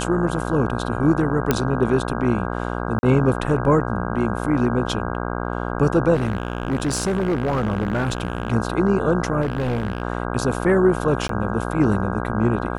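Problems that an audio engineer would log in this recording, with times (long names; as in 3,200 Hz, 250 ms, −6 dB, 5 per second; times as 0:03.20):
mains buzz 60 Hz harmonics 27 −26 dBFS
0:01.51: click −3 dBFS
0:02.99–0:03.03: drop-out 40 ms
0:06.14–0:08.54: clipping −17 dBFS
0:09.41–0:10.02: clipping −18.5 dBFS
0:11.28–0:11.29: drop-out 13 ms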